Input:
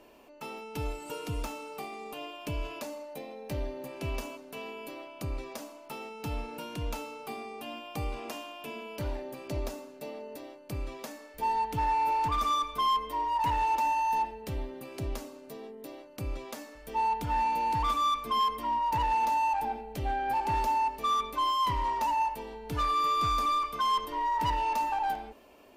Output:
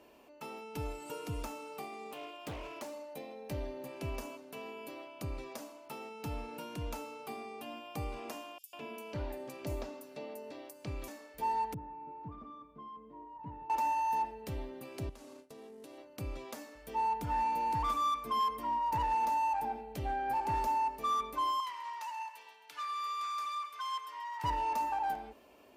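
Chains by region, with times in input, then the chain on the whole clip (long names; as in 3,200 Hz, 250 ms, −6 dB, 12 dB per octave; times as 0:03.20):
0:02.11–0:02.94: low-shelf EQ 130 Hz −9 dB + highs frequency-modulated by the lows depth 0.61 ms
0:08.58–0:11.08: multiband delay without the direct sound highs, lows 150 ms, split 5,900 Hz + one half of a high-frequency compander encoder only
0:11.74–0:13.70: resonant band-pass 190 Hz, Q 1.4 + high-frequency loss of the air 160 metres
0:15.09–0:15.98: variable-slope delta modulation 64 kbit/s + noise gate with hold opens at −36 dBFS, closes at −44 dBFS + downward compressor 12 to 1, threshold −43 dBFS
0:21.60–0:24.44: high-pass filter 1,500 Hz + high-shelf EQ 9,600 Hz −9.5 dB + repeating echo 133 ms, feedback 55%, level −14 dB
whole clip: high-pass filter 46 Hz; dynamic equaliser 3,400 Hz, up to −5 dB, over −49 dBFS, Q 1.2; level −3.5 dB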